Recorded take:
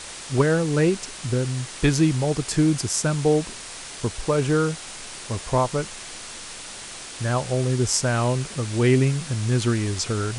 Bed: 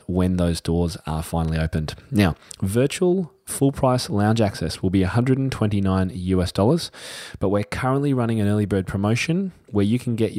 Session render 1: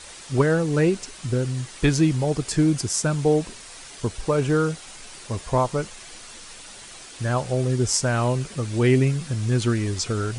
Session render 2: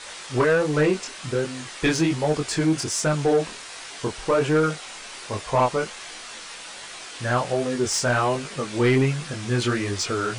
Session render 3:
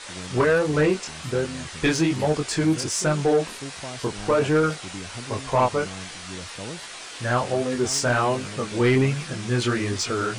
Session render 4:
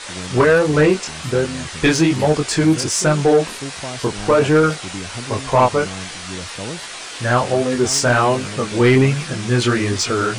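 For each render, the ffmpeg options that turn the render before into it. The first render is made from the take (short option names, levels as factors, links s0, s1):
-af "afftdn=nr=7:nf=-38"
-filter_complex "[0:a]flanger=delay=19.5:depth=5.4:speed=1.3,asplit=2[s0][s1];[s1]highpass=f=720:p=1,volume=6.31,asoftclip=type=tanh:threshold=0.335[s2];[s0][s2]amix=inputs=2:normalize=0,lowpass=f=3400:p=1,volume=0.501"
-filter_complex "[1:a]volume=0.119[s0];[0:a][s0]amix=inputs=2:normalize=0"
-af "volume=2.11"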